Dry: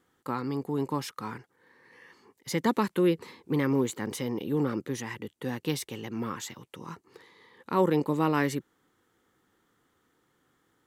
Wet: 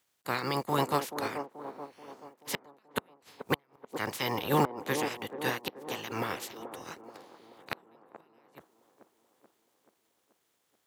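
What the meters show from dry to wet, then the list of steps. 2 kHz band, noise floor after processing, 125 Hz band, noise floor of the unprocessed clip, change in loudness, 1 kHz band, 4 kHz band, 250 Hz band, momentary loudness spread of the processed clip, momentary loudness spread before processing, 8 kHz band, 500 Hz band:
+1.5 dB, -76 dBFS, -6.0 dB, -72 dBFS, -3.5 dB, +0.5 dB, +2.5 dB, -9.0 dB, 18 LU, 15 LU, -2.5 dB, -4.5 dB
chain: spectral peaks clipped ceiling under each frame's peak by 23 dB; companded quantiser 6-bit; inverted gate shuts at -16 dBFS, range -39 dB; high-pass 74 Hz; on a send: feedback echo behind a band-pass 432 ms, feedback 61%, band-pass 480 Hz, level -4 dB; on the sum: upward expansion 1.5:1, over -47 dBFS; trim +3.5 dB

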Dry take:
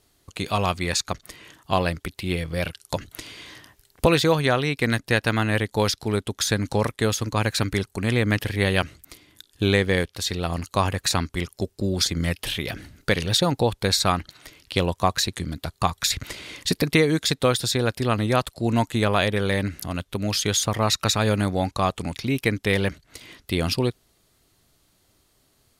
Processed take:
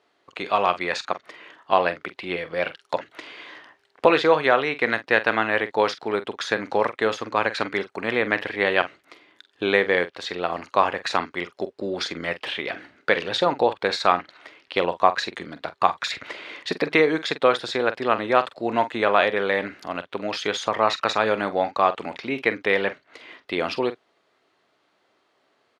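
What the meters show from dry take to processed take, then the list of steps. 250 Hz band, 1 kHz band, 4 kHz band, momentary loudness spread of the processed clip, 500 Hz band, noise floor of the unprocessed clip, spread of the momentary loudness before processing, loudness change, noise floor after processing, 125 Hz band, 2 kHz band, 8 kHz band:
-5.0 dB, +4.5 dB, -4.5 dB, 12 LU, +2.5 dB, -65 dBFS, 10 LU, 0.0 dB, -68 dBFS, -16.5 dB, +3.5 dB, -14.5 dB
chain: band-pass 450–2300 Hz; doubling 45 ms -13 dB; trim +5 dB

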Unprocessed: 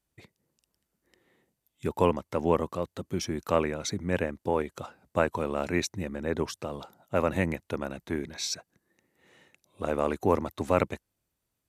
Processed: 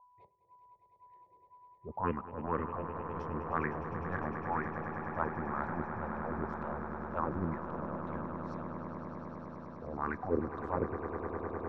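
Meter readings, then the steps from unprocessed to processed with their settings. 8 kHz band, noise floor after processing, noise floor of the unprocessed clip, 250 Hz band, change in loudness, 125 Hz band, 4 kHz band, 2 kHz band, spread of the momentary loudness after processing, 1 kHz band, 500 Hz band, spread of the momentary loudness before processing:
under -35 dB, -66 dBFS, -83 dBFS, -6.5 dB, -7.5 dB, -5.5 dB, under -25 dB, -5.0 dB, 8 LU, -2.5 dB, -10.0 dB, 9 LU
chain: de-hum 399 Hz, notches 9; transient shaper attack -12 dB, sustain +1 dB; whistle 990 Hz -56 dBFS; LFO low-pass sine 2 Hz 390–1800 Hz; touch-sensitive phaser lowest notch 240 Hz, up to 1.2 kHz, full sweep at -17 dBFS; on a send: echo with a slow build-up 102 ms, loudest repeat 8, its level -12 dB; on the sum: trim -4 dB

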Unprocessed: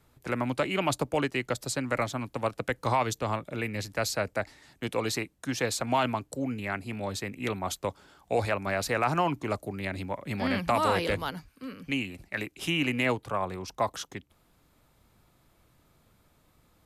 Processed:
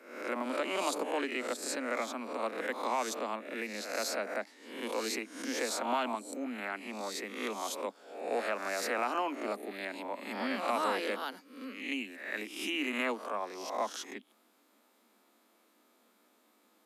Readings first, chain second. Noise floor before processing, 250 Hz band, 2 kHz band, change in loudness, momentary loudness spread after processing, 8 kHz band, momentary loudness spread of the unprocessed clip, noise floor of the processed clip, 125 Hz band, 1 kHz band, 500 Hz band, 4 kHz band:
-66 dBFS, -6.5 dB, -4.0 dB, -5.0 dB, 8 LU, -2.5 dB, 9 LU, -69 dBFS, under -25 dB, -4.5 dB, -4.5 dB, -4.0 dB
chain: reverse spectral sustain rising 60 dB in 0.63 s; steep high-pass 210 Hz 96 dB/octave; in parallel at -0.5 dB: compression, threshold -40 dBFS, peak gain reduction 19 dB; on the sum: trim -8.5 dB

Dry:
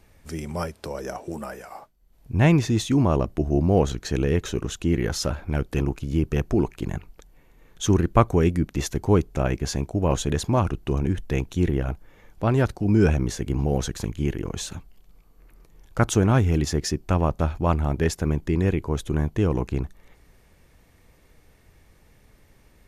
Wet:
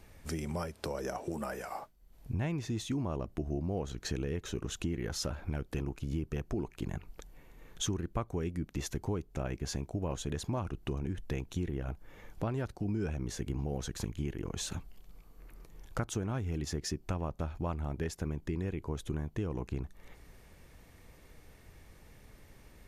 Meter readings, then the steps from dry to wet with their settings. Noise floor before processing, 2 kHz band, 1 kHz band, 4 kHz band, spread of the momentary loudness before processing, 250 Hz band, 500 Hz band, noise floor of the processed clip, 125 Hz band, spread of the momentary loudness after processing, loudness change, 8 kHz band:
-57 dBFS, -12.5 dB, -14.0 dB, -8.5 dB, 13 LU, -13.5 dB, -13.5 dB, -59 dBFS, -13.0 dB, 6 LU, -13.5 dB, -9.0 dB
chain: compression 5:1, threshold -33 dBFS, peak gain reduction 19.5 dB

